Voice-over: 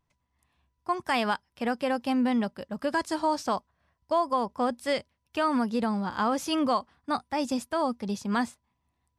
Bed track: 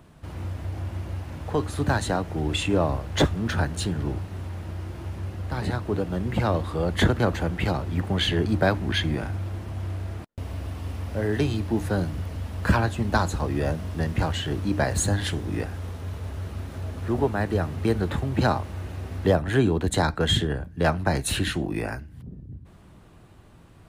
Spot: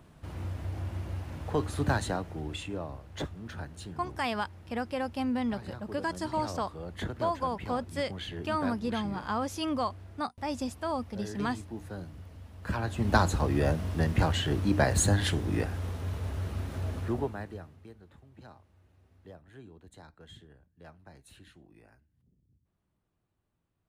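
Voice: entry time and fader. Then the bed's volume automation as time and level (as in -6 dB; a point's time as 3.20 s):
3.10 s, -5.0 dB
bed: 1.91 s -4 dB
2.85 s -15.5 dB
12.61 s -15.5 dB
13.09 s -1 dB
16.96 s -1 dB
17.97 s -29.5 dB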